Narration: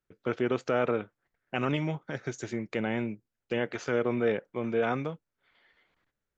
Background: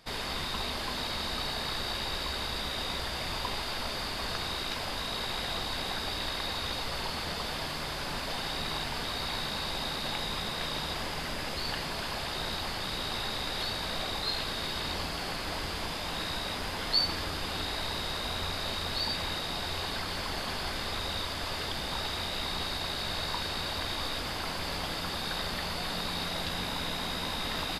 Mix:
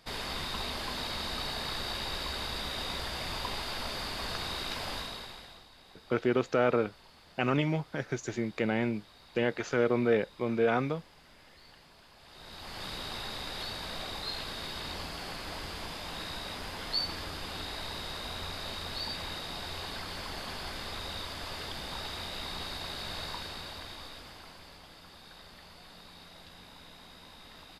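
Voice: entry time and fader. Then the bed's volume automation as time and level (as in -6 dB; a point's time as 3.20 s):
5.85 s, +1.0 dB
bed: 4.96 s -2 dB
5.70 s -22.5 dB
12.16 s -22.5 dB
12.83 s -5 dB
23.24 s -5 dB
24.81 s -18 dB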